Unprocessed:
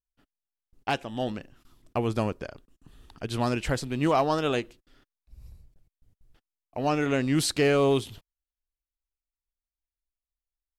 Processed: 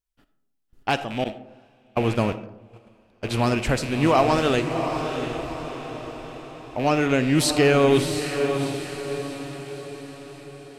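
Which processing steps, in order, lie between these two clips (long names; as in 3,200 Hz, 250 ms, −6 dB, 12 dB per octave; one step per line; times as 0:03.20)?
loose part that buzzes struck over −38 dBFS, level −29 dBFS
feedback delay with all-pass diffusion 693 ms, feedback 51%, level −7 dB
0:01.24–0:03.23: noise gate −29 dBFS, range −25 dB
comb and all-pass reverb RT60 0.9 s, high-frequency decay 0.35×, pre-delay 15 ms, DRR 12 dB
level +4.5 dB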